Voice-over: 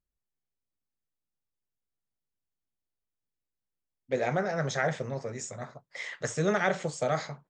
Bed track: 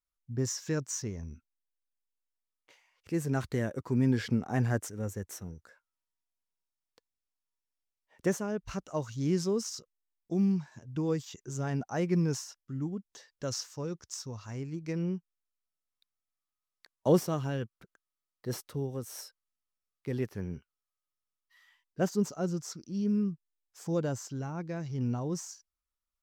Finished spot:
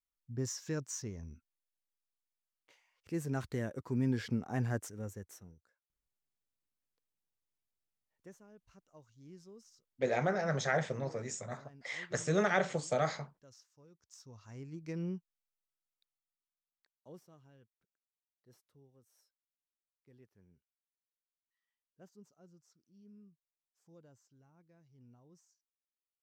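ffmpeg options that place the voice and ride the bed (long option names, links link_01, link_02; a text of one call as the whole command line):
ffmpeg -i stem1.wav -i stem2.wav -filter_complex "[0:a]adelay=5900,volume=-3dB[link_01];[1:a]volume=14dB,afade=type=out:start_time=4.9:duration=0.89:silence=0.105925,afade=type=in:start_time=13.94:duration=1.06:silence=0.105925,afade=type=out:start_time=15.76:duration=1.31:silence=0.0668344[link_02];[link_01][link_02]amix=inputs=2:normalize=0" out.wav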